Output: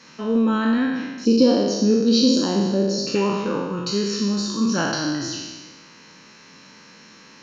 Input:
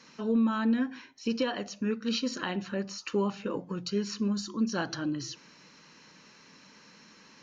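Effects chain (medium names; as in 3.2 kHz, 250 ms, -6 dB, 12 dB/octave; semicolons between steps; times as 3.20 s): spectral sustain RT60 1.39 s; 1.25–3.15 s: FFT filter 130 Hz 0 dB, 260 Hz +8 dB, 520 Hz +5 dB, 2 kHz -15 dB, 3 kHz -8 dB, 4.5 kHz +6 dB, 7.1 kHz 0 dB; trim +5.5 dB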